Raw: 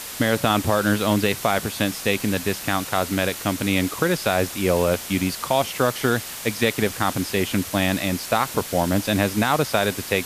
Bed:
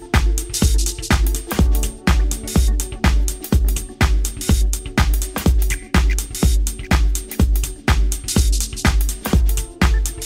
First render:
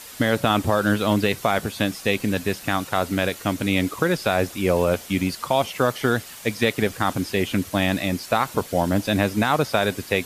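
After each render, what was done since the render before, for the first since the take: noise reduction 8 dB, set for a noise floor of -34 dBFS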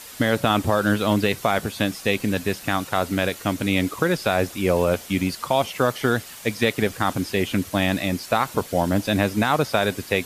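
no audible change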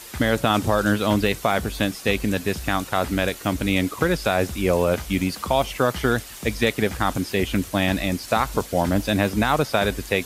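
add bed -19.5 dB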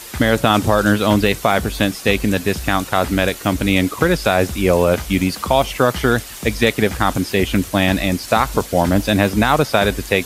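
trim +5.5 dB; peak limiter -2 dBFS, peak gain reduction 1 dB

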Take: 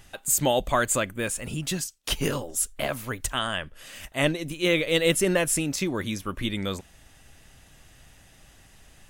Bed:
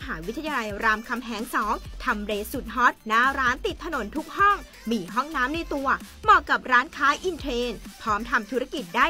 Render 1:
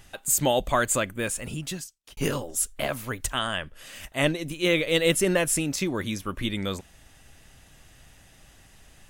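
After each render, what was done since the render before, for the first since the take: 1.41–2.17 s: fade out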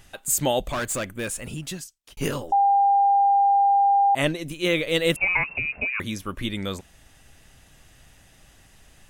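0.67–1.72 s: hard clipper -24 dBFS; 2.52–4.15 s: bleep 799 Hz -15 dBFS; 5.16–6.00 s: frequency inversion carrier 2.7 kHz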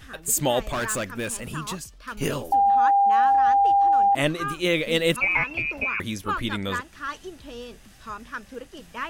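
add bed -11.5 dB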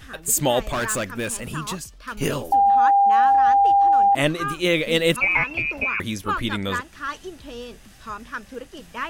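trim +2.5 dB

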